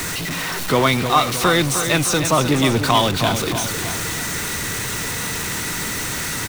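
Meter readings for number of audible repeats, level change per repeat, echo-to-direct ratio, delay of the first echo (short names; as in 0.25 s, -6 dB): 3, -5.5 dB, -7.5 dB, 0.309 s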